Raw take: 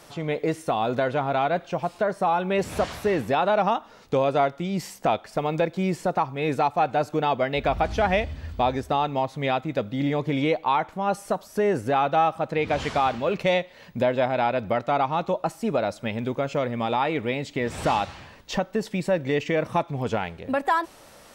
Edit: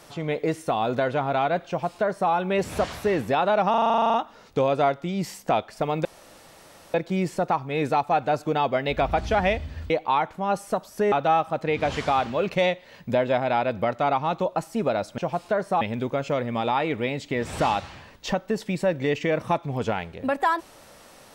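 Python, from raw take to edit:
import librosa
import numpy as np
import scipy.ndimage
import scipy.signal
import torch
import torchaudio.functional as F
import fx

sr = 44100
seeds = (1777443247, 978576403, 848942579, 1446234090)

y = fx.edit(x, sr, fx.duplicate(start_s=1.68, length_s=0.63, to_s=16.06),
    fx.stutter(start_s=3.7, slice_s=0.04, count=12),
    fx.insert_room_tone(at_s=5.61, length_s=0.89),
    fx.cut(start_s=8.57, length_s=1.91),
    fx.cut(start_s=11.7, length_s=0.3), tone=tone)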